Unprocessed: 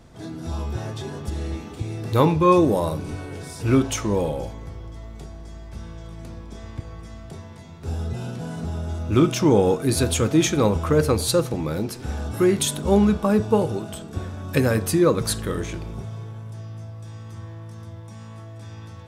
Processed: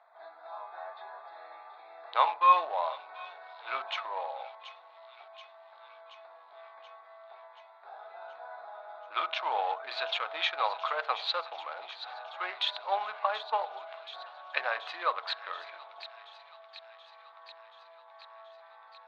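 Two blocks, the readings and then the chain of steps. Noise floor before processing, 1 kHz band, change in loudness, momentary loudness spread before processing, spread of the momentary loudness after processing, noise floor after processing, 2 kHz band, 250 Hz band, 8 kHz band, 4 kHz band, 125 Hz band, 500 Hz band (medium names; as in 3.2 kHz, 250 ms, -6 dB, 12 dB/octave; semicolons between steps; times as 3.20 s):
-40 dBFS, -1.0 dB, -10.0 dB, 21 LU, 22 LU, -55 dBFS, -2.5 dB, under -40 dB, under -30 dB, -3.5 dB, under -40 dB, -17.0 dB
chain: local Wiener filter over 15 samples; Chebyshev band-pass 680–4000 Hz, order 4; feedback echo behind a high-pass 729 ms, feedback 68%, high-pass 2.8 kHz, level -10.5 dB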